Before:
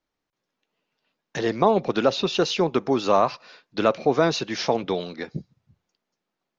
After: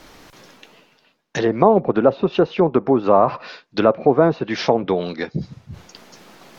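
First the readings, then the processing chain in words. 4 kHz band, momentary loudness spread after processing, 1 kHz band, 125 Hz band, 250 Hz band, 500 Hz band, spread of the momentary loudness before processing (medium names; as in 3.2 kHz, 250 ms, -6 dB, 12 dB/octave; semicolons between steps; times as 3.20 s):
-4.0 dB, 13 LU, +4.5 dB, +6.5 dB, +6.0 dB, +6.0 dB, 15 LU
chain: low-pass that closes with the level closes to 1.1 kHz, closed at -19 dBFS; reverse; upward compressor, threshold -26 dBFS; reverse; trim +6 dB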